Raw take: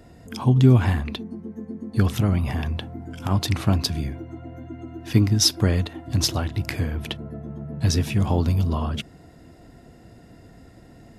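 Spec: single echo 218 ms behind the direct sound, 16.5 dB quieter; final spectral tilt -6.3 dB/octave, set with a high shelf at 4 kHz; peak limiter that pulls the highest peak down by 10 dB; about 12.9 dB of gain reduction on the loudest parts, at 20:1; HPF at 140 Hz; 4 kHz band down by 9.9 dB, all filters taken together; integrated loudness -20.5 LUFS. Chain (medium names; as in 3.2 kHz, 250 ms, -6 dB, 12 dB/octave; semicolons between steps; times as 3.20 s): high-pass 140 Hz; treble shelf 4 kHz -7.5 dB; peaking EQ 4 kHz -8 dB; compression 20:1, threshold -24 dBFS; peak limiter -23.5 dBFS; delay 218 ms -16.5 dB; trim +14 dB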